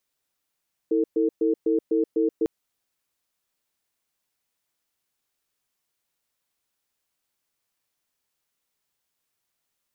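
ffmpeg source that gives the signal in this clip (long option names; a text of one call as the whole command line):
ffmpeg -f lavfi -i "aevalsrc='0.0841*(sin(2*PI*323*t)+sin(2*PI*450*t))*clip(min(mod(t,0.25),0.13-mod(t,0.25))/0.005,0,1)':duration=1.55:sample_rate=44100" out.wav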